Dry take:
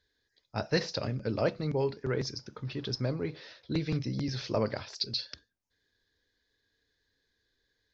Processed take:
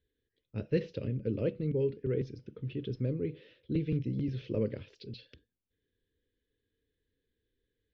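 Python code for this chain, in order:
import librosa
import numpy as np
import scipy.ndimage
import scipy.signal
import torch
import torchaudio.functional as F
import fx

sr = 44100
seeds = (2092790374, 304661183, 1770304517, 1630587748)

y = fx.curve_eq(x, sr, hz=(500.0, 720.0, 1400.0, 3000.0, 4700.0), db=(0, -24, -17, -4, -25))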